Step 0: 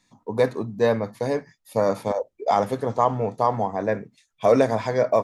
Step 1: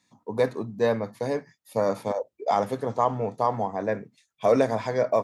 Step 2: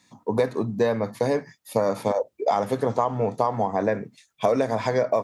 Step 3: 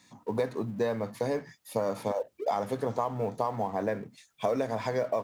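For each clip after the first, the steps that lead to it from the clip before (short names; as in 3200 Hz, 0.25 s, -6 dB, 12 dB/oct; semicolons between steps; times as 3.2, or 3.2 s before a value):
HPF 88 Hz; gain -3 dB
compressor 6:1, threshold -27 dBFS, peak gain reduction 11.5 dB; gain +8.5 dB
G.711 law mismatch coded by mu; gain -7.5 dB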